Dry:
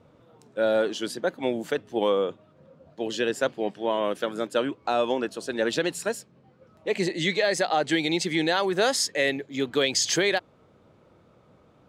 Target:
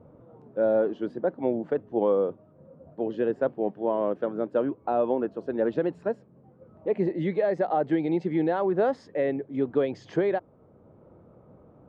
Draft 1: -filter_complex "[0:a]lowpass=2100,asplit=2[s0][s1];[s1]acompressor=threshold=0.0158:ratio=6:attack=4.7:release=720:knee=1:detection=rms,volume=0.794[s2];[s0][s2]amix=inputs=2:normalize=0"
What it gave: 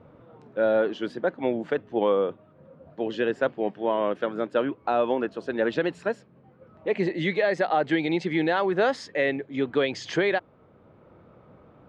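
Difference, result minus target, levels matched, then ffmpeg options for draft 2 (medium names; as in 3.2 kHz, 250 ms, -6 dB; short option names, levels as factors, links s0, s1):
2 kHz band +10.0 dB
-filter_complex "[0:a]lowpass=830,asplit=2[s0][s1];[s1]acompressor=threshold=0.0158:ratio=6:attack=4.7:release=720:knee=1:detection=rms,volume=0.794[s2];[s0][s2]amix=inputs=2:normalize=0"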